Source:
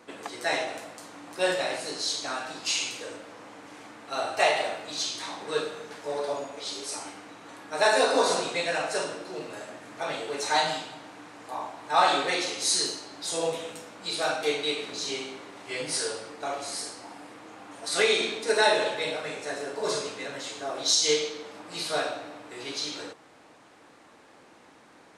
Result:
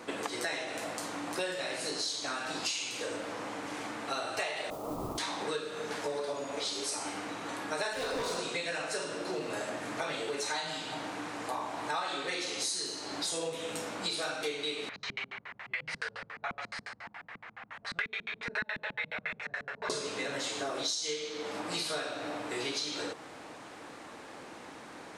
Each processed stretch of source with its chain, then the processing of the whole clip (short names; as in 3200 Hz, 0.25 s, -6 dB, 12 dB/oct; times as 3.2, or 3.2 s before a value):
4.7–5.18 delta modulation 16 kbps, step -41.5 dBFS + steep low-pass 1300 Hz 96 dB/oct + modulation noise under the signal 17 dB
7.93–8.39 high shelf 5900 Hz -6.5 dB + hard clip -23 dBFS
14.89–19.9 passive tone stack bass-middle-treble 10-0-10 + LFO low-pass square 7.1 Hz 210–1900 Hz
whole clip: dynamic EQ 740 Hz, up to -6 dB, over -40 dBFS, Q 1.8; compressor 10:1, threshold -39 dBFS; gain +7 dB